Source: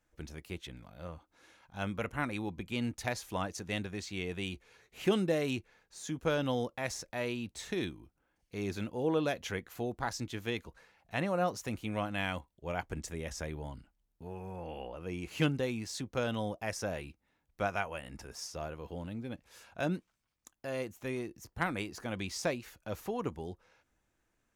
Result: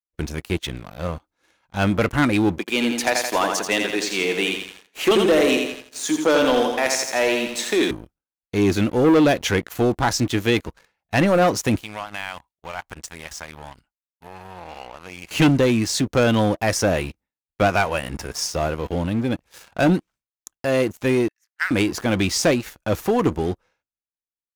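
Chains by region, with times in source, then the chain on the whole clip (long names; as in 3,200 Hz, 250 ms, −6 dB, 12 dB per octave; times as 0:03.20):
0:02.58–0:07.91: Bessel high-pass filter 370 Hz, order 4 + repeating echo 84 ms, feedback 53%, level −6 dB
0:11.82–0:15.31: low shelf with overshoot 610 Hz −9 dB, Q 1.5 + downward compressor 2 to 1, threshold −52 dBFS
0:21.28–0:21.71: four-pole ladder high-pass 1,500 Hz, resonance 60% + high-shelf EQ 5,900 Hz −6 dB
whole clip: downward expander −58 dBFS; dynamic equaliser 310 Hz, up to +5 dB, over −48 dBFS, Q 3; leveller curve on the samples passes 3; level +6 dB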